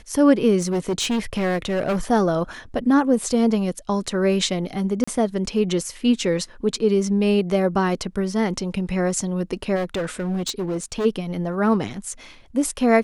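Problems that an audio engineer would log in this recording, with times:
0.59–2 clipped -18.5 dBFS
5.04–5.08 gap 35 ms
9.75–11.06 clipped -21 dBFS

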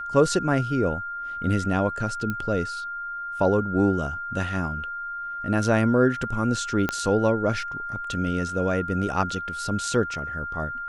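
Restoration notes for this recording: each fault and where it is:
tone 1400 Hz -30 dBFS
2.3 pop -16 dBFS
6.89 pop -10 dBFS

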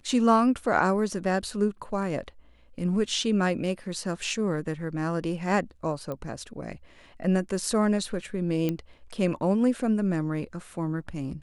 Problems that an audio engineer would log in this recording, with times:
6.12 pop -22 dBFS
8.69 pop -15 dBFS

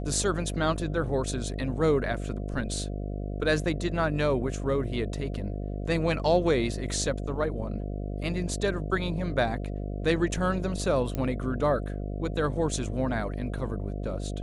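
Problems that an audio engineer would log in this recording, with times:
buzz 50 Hz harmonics 14 -33 dBFS
11.15 pop -18 dBFS

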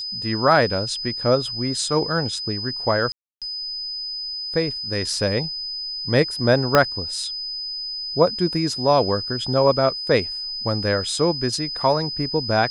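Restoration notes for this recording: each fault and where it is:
tone 5000 Hz -27 dBFS
3.12–3.42 gap 0.297 s
6.75 pop -1 dBFS

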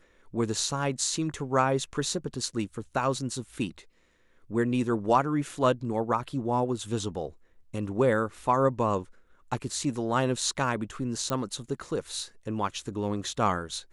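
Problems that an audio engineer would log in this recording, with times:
11.3 pop -16 dBFS

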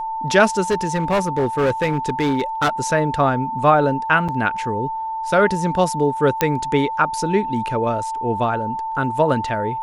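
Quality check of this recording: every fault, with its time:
tone 890 Hz -23 dBFS
0.7–2.7 clipped -14 dBFS
4.28–4.29 gap 6.8 ms
6.41 pop -2 dBFS

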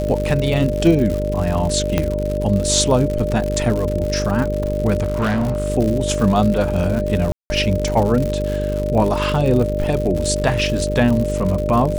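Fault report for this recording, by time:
buzz 50 Hz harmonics 10 -23 dBFS
crackle 130/s -22 dBFS
tone 600 Hz -22 dBFS
1.98 pop -4 dBFS
5.02–5.68 clipped -15.5 dBFS
7.32–7.5 gap 0.18 s

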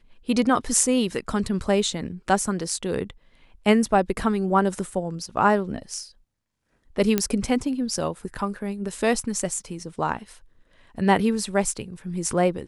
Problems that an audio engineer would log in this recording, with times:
7.18 pop -6 dBFS

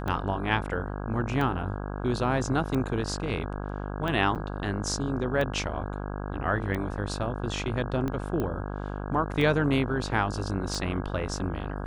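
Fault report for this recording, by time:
buzz 50 Hz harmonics 33 -34 dBFS
tick 45 rpm -19 dBFS
4.35–4.36 gap 7.8 ms
8.4 pop -18 dBFS

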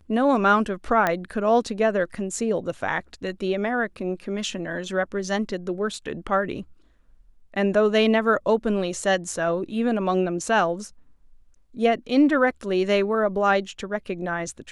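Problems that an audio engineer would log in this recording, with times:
1.07 pop -9 dBFS

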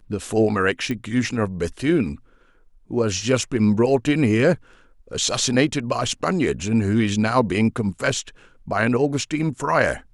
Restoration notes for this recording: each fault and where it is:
0.91 pop -15 dBFS

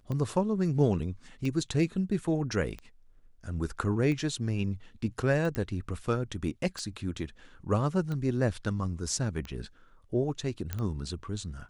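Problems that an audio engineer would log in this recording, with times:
tick 45 rpm -24 dBFS
5.55 pop -19 dBFS
10.73 pop -18 dBFS

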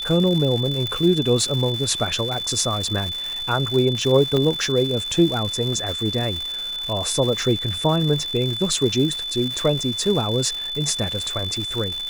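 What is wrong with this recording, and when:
crackle 270/s -26 dBFS
tone 3500 Hz -26 dBFS
0.87 pop -13 dBFS
4.37 pop -11 dBFS

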